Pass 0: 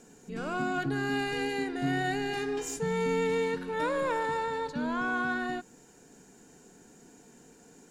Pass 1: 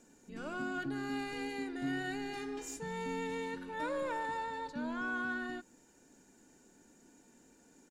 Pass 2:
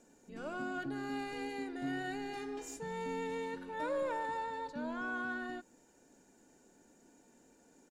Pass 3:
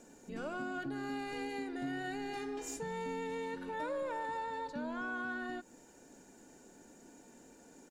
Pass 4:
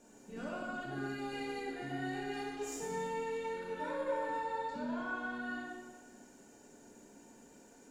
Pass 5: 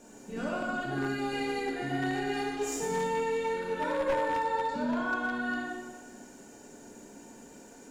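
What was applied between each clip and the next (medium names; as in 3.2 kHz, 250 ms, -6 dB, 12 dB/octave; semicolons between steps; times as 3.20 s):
comb 3.4 ms, depth 40%; trim -8 dB
peaking EQ 610 Hz +5.5 dB 1.2 oct; trim -3 dB
compression 2.5:1, threshold -46 dBFS, peak gain reduction 9.5 dB; trim +6.5 dB
plate-style reverb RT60 1.4 s, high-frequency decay 0.9×, DRR -5 dB; trim -6 dB
one-sided wavefolder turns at -31.5 dBFS; trim +8 dB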